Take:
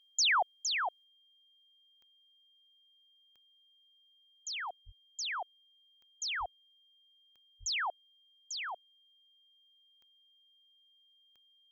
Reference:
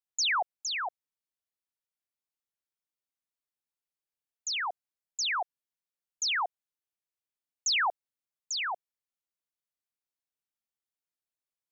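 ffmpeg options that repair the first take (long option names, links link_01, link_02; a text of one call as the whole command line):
ffmpeg -i in.wav -filter_complex "[0:a]adeclick=threshold=4,bandreject=frequency=3200:width=30,asplit=3[link_01][link_02][link_03];[link_01]afade=type=out:start_time=4.85:duration=0.02[link_04];[link_02]highpass=frequency=140:width=0.5412,highpass=frequency=140:width=1.3066,afade=type=in:start_time=4.85:duration=0.02,afade=type=out:start_time=4.97:duration=0.02[link_05];[link_03]afade=type=in:start_time=4.97:duration=0.02[link_06];[link_04][link_05][link_06]amix=inputs=3:normalize=0,asplit=3[link_07][link_08][link_09];[link_07]afade=type=out:start_time=6.39:duration=0.02[link_10];[link_08]highpass=frequency=140:width=0.5412,highpass=frequency=140:width=1.3066,afade=type=in:start_time=6.39:duration=0.02,afade=type=out:start_time=6.51:duration=0.02[link_11];[link_09]afade=type=in:start_time=6.51:duration=0.02[link_12];[link_10][link_11][link_12]amix=inputs=3:normalize=0,asplit=3[link_13][link_14][link_15];[link_13]afade=type=out:start_time=7.59:duration=0.02[link_16];[link_14]highpass=frequency=140:width=0.5412,highpass=frequency=140:width=1.3066,afade=type=in:start_time=7.59:duration=0.02,afade=type=out:start_time=7.71:duration=0.02[link_17];[link_15]afade=type=in:start_time=7.71:duration=0.02[link_18];[link_16][link_17][link_18]amix=inputs=3:normalize=0,asetnsamples=nb_out_samples=441:pad=0,asendcmd='1.04 volume volume 7dB',volume=0dB" out.wav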